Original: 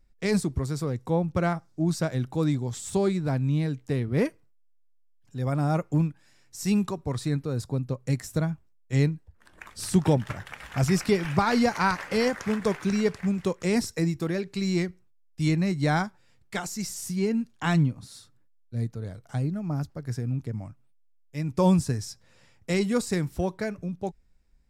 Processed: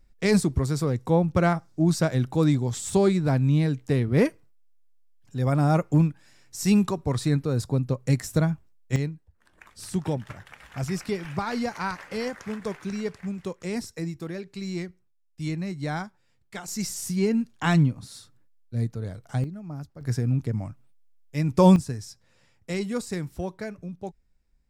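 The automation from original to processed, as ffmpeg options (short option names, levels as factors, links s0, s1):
-af "asetnsamples=n=441:p=0,asendcmd='8.96 volume volume -6dB;16.68 volume volume 2.5dB;19.44 volume volume -7dB;20.01 volume volume 5dB;21.76 volume volume -4dB',volume=1.58"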